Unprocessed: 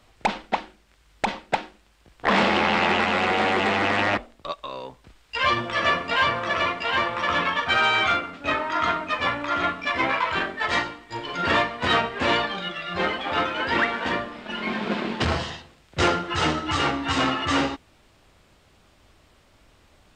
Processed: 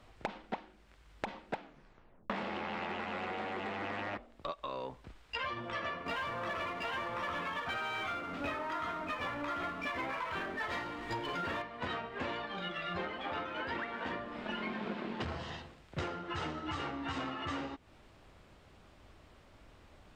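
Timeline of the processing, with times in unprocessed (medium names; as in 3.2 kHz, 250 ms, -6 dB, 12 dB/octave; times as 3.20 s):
1.57 s: tape stop 0.73 s
6.06–11.62 s: power-law waveshaper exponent 0.7
whole clip: treble shelf 3.3 kHz -9 dB; compression 16:1, threshold -34 dBFS; trim -1 dB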